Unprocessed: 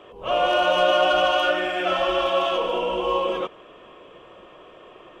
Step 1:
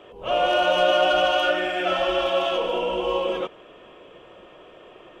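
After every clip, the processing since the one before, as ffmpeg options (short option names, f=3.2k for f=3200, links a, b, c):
-af "equalizer=f=1.1k:t=o:w=0.22:g=-6.5"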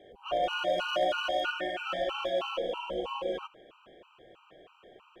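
-af "volume=13dB,asoftclip=hard,volume=-13dB,afftfilt=real='re*gt(sin(2*PI*3.1*pts/sr)*(1-2*mod(floor(b*sr/1024/780),2)),0)':imag='im*gt(sin(2*PI*3.1*pts/sr)*(1-2*mod(floor(b*sr/1024/780),2)),0)':win_size=1024:overlap=0.75,volume=-6.5dB"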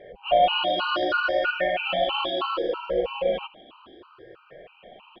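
-af "afftfilt=real='re*pow(10,13/40*sin(2*PI*(0.53*log(max(b,1)*sr/1024/100)/log(2)-(0.66)*(pts-256)/sr)))':imag='im*pow(10,13/40*sin(2*PI*(0.53*log(max(b,1)*sr/1024/100)/log(2)-(0.66)*(pts-256)/sr)))':win_size=1024:overlap=0.75,aresample=11025,aresample=44100,volume=5.5dB"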